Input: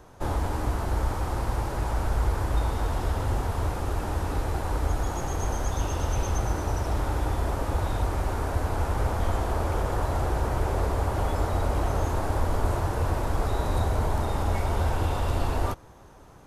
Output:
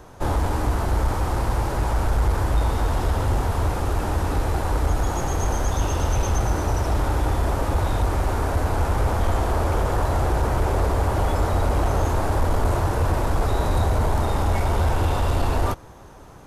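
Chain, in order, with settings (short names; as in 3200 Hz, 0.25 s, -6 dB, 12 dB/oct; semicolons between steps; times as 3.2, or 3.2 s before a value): soft clip -17 dBFS, distortion -21 dB; gain +6 dB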